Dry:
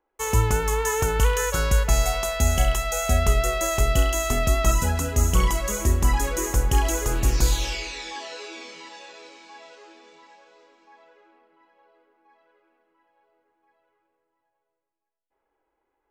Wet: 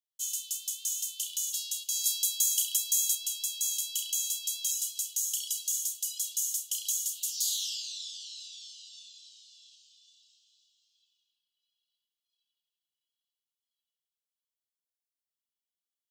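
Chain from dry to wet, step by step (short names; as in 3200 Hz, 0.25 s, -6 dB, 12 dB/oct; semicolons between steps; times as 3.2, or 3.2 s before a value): steep high-pass 3000 Hz 96 dB/oct; high shelf 6100 Hz +2 dB, from 2.04 s +11 dB, from 3.15 s +4.5 dB; gain -2.5 dB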